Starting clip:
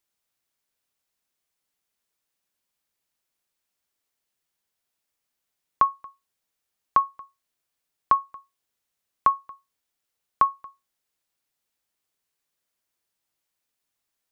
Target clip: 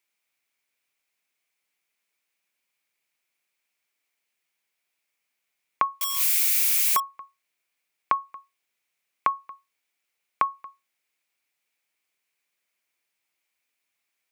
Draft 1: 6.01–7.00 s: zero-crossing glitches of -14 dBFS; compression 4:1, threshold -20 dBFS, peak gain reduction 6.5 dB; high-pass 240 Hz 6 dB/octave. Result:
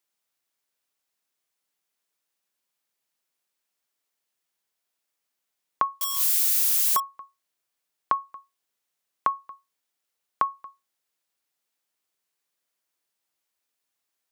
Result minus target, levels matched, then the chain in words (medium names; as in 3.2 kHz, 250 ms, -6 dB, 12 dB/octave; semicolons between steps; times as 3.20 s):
2 kHz band -6.5 dB
6.01–7.00 s: zero-crossing glitches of -14 dBFS; compression 4:1, threshold -20 dBFS, peak gain reduction 6.5 dB; high-pass 240 Hz 6 dB/octave; peaking EQ 2.3 kHz +12 dB 0.5 oct